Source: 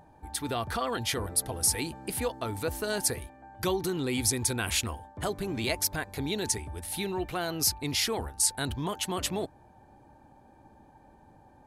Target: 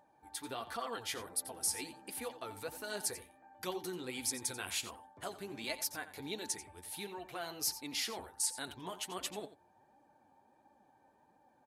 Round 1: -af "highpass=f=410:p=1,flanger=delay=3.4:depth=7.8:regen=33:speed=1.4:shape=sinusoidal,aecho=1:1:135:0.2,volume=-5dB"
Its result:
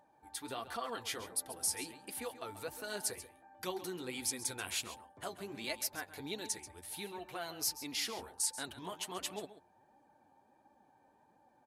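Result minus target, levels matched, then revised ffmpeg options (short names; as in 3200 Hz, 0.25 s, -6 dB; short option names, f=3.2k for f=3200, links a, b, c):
echo 47 ms late
-af "highpass=f=410:p=1,flanger=delay=3.4:depth=7.8:regen=33:speed=1.4:shape=sinusoidal,aecho=1:1:88:0.2,volume=-5dB"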